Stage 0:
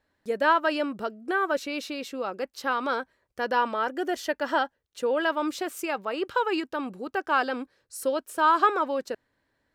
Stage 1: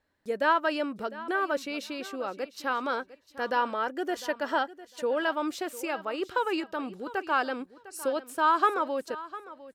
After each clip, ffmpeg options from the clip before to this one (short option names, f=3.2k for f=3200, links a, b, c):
-af "aecho=1:1:703|1406:0.15|0.0239,volume=-2.5dB"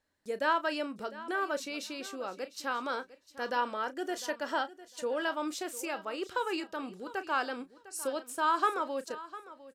-filter_complex "[0:a]equalizer=f=7.5k:t=o:w=1.6:g=8,bandreject=f=60:t=h:w=6,bandreject=f=120:t=h:w=6,asplit=2[a][b];[b]adelay=33,volume=-13.5dB[c];[a][c]amix=inputs=2:normalize=0,volume=-5dB"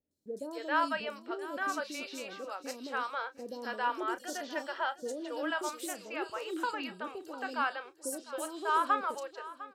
-filter_complex "[0:a]highpass=f=110:p=1,acrossover=split=520|4200[a][b][c];[c]adelay=110[d];[b]adelay=270[e];[a][e][d]amix=inputs=3:normalize=0"